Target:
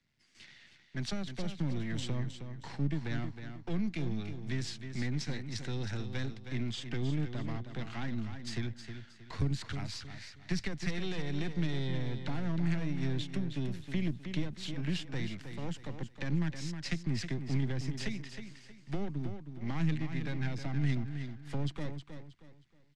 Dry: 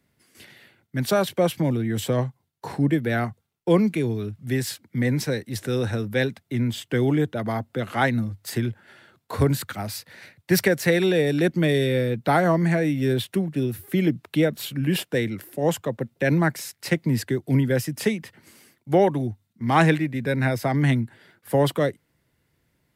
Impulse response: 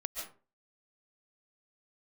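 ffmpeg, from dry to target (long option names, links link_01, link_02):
-filter_complex "[0:a]aeval=exprs='if(lt(val(0),0),0.251*val(0),val(0))':channel_layout=same,equalizer=frequency=780:width_type=o:width=1.1:gain=4,acrossover=split=380[link_01][link_02];[link_02]acompressor=threshold=-33dB:ratio=6[link_03];[link_01][link_03]amix=inputs=2:normalize=0,firequalizer=gain_entry='entry(170,0);entry(470,-10);entry(1900,3);entry(4100,5)':delay=0.05:min_phase=1,asplit=2[link_04][link_05];[link_05]aecho=0:1:315|630|945|1260:0.355|0.114|0.0363|0.0116[link_06];[link_04][link_06]amix=inputs=2:normalize=0,acrossover=split=210|3000[link_07][link_08][link_09];[link_08]acompressor=threshold=-30dB:ratio=6[link_10];[link_07][link_10][link_09]amix=inputs=3:normalize=0,lowpass=frequency=6500:width=0.5412,lowpass=frequency=6500:width=1.3066,volume=-6dB"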